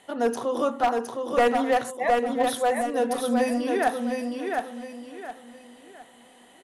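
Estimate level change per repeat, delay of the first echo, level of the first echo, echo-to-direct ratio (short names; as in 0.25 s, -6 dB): -9.5 dB, 0.713 s, -4.0 dB, -3.5 dB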